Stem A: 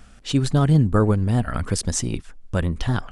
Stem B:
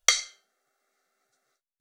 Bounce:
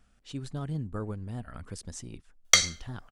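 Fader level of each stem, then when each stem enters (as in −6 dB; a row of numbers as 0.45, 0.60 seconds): −17.5, +1.5 decibels; 0.00, 2.45 seconds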